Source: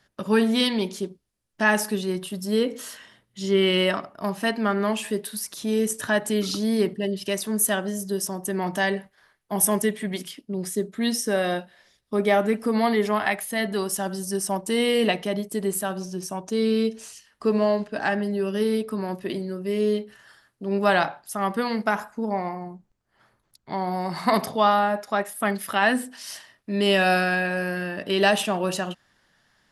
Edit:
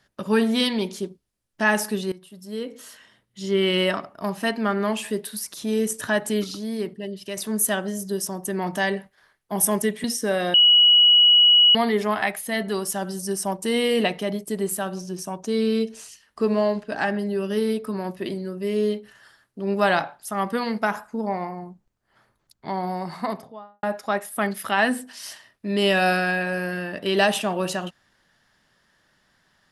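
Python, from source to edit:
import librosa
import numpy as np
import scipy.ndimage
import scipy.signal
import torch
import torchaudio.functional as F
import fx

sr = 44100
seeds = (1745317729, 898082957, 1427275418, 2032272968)

y = fx.studio_fade_out(x, sr, start_s=23.76, length_s=1.11)
y = fx.edit(y, sr, fx.fade_in_from(start_s=2.12, length_s=1.7, floor_db=-17.5),
    fx.clip_gain(start_s=6.44, length_s=0.93, db=-6.0),
    fx.cut(start_s=10.04, length_s=1.04),
    fx.bleep(start_s=11.58, length_s=1.21, hz=2920.0, db=-11.0), tone=tone)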